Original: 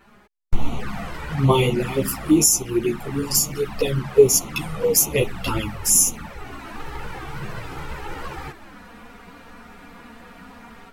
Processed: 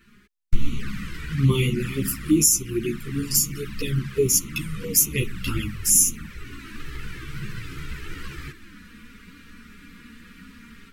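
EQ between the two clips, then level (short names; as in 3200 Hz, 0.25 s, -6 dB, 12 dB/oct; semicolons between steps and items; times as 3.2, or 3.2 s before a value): dynamic EQ 4100 Hz, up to -4 dB, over -38 dBFS, Q 1.1; Butterworth band-stop 710 Hz, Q 0.55; 0.0 dB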